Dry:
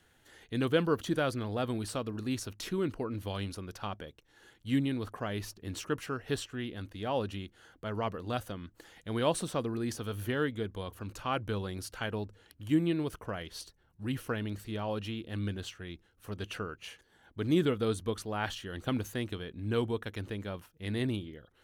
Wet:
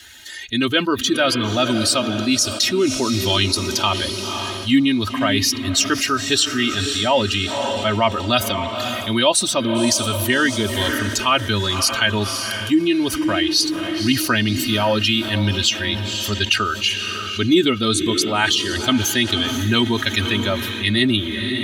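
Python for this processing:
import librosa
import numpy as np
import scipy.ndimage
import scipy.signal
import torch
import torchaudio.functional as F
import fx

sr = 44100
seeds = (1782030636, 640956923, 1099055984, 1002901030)

p1 = fx.bin_expand(x, sr, power=1.5)
p2 = fx.peak_eq(p1, sr, hz=4800.0, db=12.5, octaves=2.3)
p3 = p2 + 0.84 * np.pad(p2, (int(3.2 * sr / 1000.0), 0))[:len(p2)]
p4 = p3 + fx.echo_diffused(p3, sr, ms=538, feedback_pct=41, wet_db=-14.0, dry=0)
p5 = fx.rider(p4, sr, range_db=5, speed_s=0.5)
p6 = scipy.signal.sosfilt(scipy.signal.butter(2, 100.0, 'highpass', fs=sr, output='sos'), p5)
p7 = fx.env_flatten(p6, sr, amount_pct=50)
y = F.gain(torch.from_numpy(p7), 9.0).numpy()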